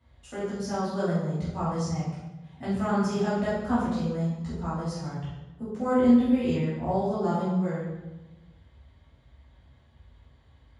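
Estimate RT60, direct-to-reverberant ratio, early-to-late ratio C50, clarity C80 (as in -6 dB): 1.1 s, -11.0 dB, 0.0 dB, 3.0 dB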